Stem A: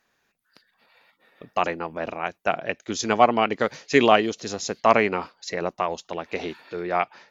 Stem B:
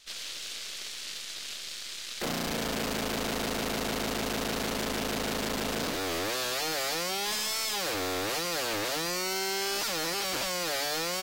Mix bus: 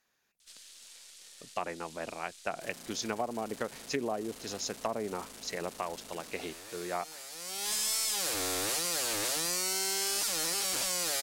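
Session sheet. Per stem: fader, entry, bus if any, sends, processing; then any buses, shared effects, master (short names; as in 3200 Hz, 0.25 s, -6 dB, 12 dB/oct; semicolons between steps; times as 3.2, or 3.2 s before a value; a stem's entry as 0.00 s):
-9.5 dB, 0.00 s, no send, treble ducked by the level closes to 760 Hz, closed at -16 dBFS; high shelf 4600 Hz +11.5 dB
+1.5 dB, 0.40 s, no send, bell 9400 Hz +14 dB 1.4 oct; auto duck -22 dB, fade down 0.50 s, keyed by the first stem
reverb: off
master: compressor 6:1, threshold -29 dBFS, peak gain reduction 9 dB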